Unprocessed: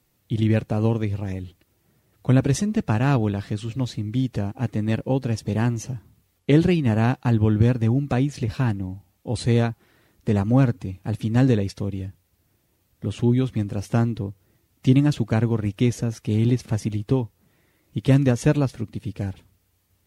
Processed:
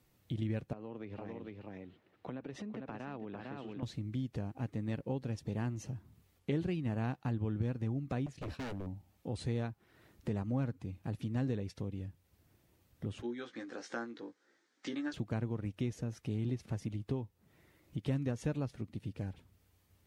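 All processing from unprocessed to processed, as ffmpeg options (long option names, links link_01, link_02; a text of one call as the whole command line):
ffmpeg -i in.wav -filter_complex "[0:a]asettb=1/sr,asplit=3[link_01][link_02][link_03];[link_01]atrim=end=0.734[link_04];[link_02]atrim=start=0.73:end=3.83,asetpts=PTS-STARTPTS,afade=type=in:duration=0.004:curve=qsin,afade=type=out:start_time=3.096:duration=0.004:curve=qsin,acrossover=split=200 3900:gain=0.141 1 0.112[link_05][link_06][link_07];[link_05][link_06][link_07]amix=inputs=3:normalize=0,aecho=1:1:452:0.376,atrim=end_sample=136710,acompressor=threshold=-35dB:ratio=3:attack=3.2:release=140:knee=1:detection=peak[link_08];[link_03]atrim=start=3.826[link_09];[link_04][link_08]acrossfade=duration=0.004:curve1=hsin:curve2=qsin[link_10];[link_10][link_09]acrossfade=duration=0.004:curve1=qsin:curve2=hsin,asettb=1/sr,asplit=3[link_11][link_12][link_13];[link_11]atrim=end=8.264[link_14];[link_12]atrim=start=8.26:end=8.87,asetpts=PTS-STARTPTS,afade=type=in:duration=0.004:curve=qsin,afade=type=out:start_time=0.606:duration=0.004:curve=qsin,agate=range=-33dB:threshold=-33dB:ratio=3:release=100:detection=peak,aeval=exprs='0.0531*(abs(mod(val(0)/0.0531+3,4)-2)-1)':channel_layout=same[link_15];[link_13]atrim=start=8.866[link_16];[link_14][link_15]acrossfade=duration=0.004:curve1=hsin:curve2=qsin[link_17];[link_17][link_16]acrossfade=duration=0.004:curve1=qsin:curve2=hsin,asettb=1/sr,asplit=3[link_18][link_19][link_20];[link_18]atrim=end=13.224[link_21];[link_19]atrim=start=13.22:end=15.14,asetpts=PTS-STARTPTS,afade=type=in:duration=0.004:curve=qsin,afade=type=out:start_time=1.916:duration=0.004:curve=qsin,highpass=frequency=340:width=0.5412,highpass=frequency=340:width=1.3066,equalizer=frequency=390:width_type=q:width=4:gain=-7,equalizer=frequency=650:width_type=q:width=4:gain=-9,equalizer=frequency=1000:width_type=q:width=4:gain=-5,equalizer=frequency=1600:width_type=q:width=4:gain=8,equalizer=frequency=2700:width_type=q:width=4:gain=-8,lowpass=frequency=6900:width=0.5412,lowpass=frequency=6900:width=1.3066,asplit=2[link_22][link_23];[link_23]adelay=17,volume=-4dB[link_24];[link_22][link_24]amix=inputs=2:normalize=0,atrim=end_sample=84672[link_25];[link_20]atrim=start=15.136[link_26];[link_21][link_25]acrossfade=duration=0.004:curve1=hsin:curve2=qsin[link_27];[link_27][link_26]acrossfade=duration=0.004:curve1=qsin:curve2=hsin,highshelf=frequency=4500:gain=-5.5,acompressor=threshold=-42dB:ratio=2,volume=-2dB" out.wav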